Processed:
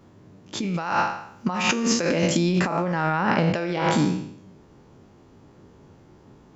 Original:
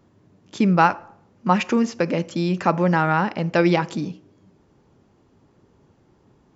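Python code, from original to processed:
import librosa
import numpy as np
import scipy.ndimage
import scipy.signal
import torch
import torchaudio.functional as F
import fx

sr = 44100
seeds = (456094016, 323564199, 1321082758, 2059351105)

y = fx.spec_trails(x, sr, decay_s=0.67)
y = fx.high_shelf(y, sr, hz=3700.0, db=9.0, at=(0.74, 2.37))
y = fx.over_compress(y, sr, threshold_db=-23.0, ratio=-1.0)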